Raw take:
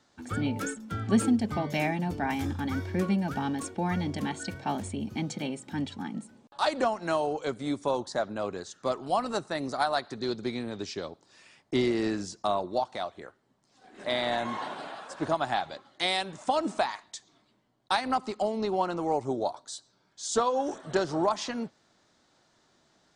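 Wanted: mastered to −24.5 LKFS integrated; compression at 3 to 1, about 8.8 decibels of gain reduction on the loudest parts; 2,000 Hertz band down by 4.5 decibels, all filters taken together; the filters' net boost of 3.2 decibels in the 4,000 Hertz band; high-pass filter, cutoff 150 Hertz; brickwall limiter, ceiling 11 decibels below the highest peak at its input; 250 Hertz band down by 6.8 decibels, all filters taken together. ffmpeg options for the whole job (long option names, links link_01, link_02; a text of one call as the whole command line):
ffmpeg -i in.wav -af "highpass=150,equalizer=frequency=250:width_type=o:gain=-8,equalizer=frequency=2000:width_type=o:gain=-7,equalizer=frequency=4000:width_type=o:gain=5.5,acompressor=threshold=-35dB:ratio=3,volume=17.5dB,alimiter=limit=-14dB:level=0:latency=1" out.wav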